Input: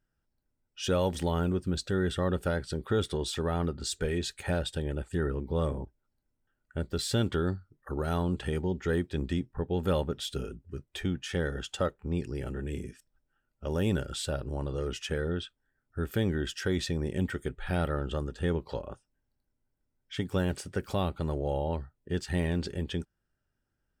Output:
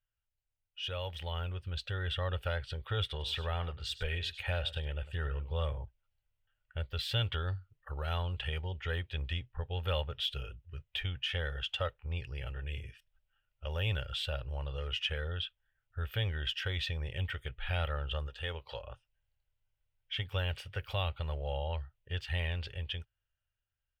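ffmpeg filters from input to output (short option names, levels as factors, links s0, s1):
-filter_complex "[0:a]asplit=3[s0][s1][s2];[s0]afade=t=out:st=3.18:d=0.02[s3];[s1]aecho=1:1:100:0.178,afade=t=in:st=3.18:d=0.02,afade=t=out:st=5.64:d=0.02[s4];[s2]afade=t=in:st=5.64:d=0.02[s5];[s3][s4][s5]amix=inputs=3:normalize=0,asettb=1/sr,asplit=3[s6][s7][s8];[s6]atrim=end=18.284[s9];[s7]atrim=start=18.28:end=18.82,asetpts=PTS-STARTPTS,afade=t=in:d=0.004:c=qsin,afade=t=out:st=0.536:d=0.004:c=qsin,bass=f=250:g=-7,treble=f=4000:g=4[s10];[s8]atrim=start=18.816[s11];[s9][s10]acrossfade=d=0.004:c1=hsin:c2=qsin[s12];[s12][s11]acrossfade=d=0.004:c1=qsin:c2=hsin,firequalizer=gain_entry='entry(110,0);entry(190,-22);entry(340,-21);entry(500,-6);entry(1600,-2);entry(2900,9);entry(4200,-4);entry(7300,-18);entry(14000,-5)':delay=0.05:min_phase=1,dynaudnorm=f=170:g=17:m=2.51,volume=0.376"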